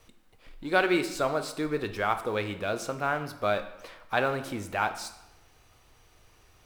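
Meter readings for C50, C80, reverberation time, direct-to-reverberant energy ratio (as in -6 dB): 11.5 dB, 14.0 dB, 0.95 s, 8.0 dB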